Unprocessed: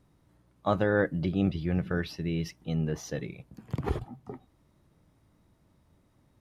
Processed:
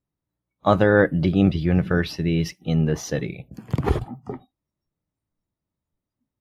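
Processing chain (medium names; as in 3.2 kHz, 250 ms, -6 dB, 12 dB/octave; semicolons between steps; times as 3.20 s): spectral noise reduction 29 dB; trim +9 dB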